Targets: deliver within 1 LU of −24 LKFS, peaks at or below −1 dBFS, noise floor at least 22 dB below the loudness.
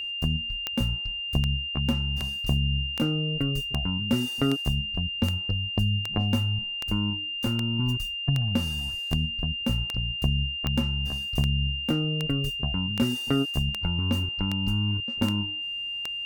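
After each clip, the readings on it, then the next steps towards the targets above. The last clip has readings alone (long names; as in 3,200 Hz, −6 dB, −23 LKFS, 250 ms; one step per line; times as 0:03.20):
number of clicks 21; interfering tone 2,800 Hz; level of the tone −30 dBFS; integrated loudness −27.0 LKFS; sample peak −11.0 dBFS; target loudness −24.0 LKFS
→ click removal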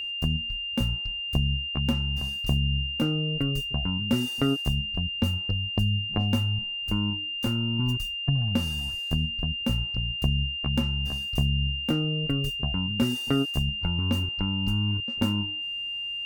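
number of clicks 0; interfering tone 2,800 Hz; level of the tone −30 dBFS
→ notch filter 2,800 Hz, Q 30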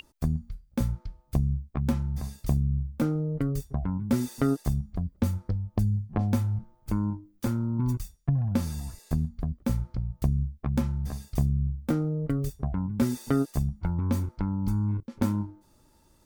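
interfering tone none found; integrated loudness −29.5 LKFS; sample peak −12.0 dBFS; target loudness −24.0 LKFS
→ level +5.5 dB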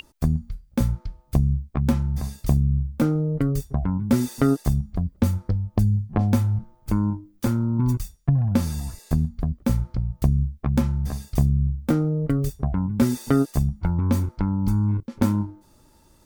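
integrated loudness −24.0 LKFS; sample peak −6.5 dBFS; background noise floor −57 dBFS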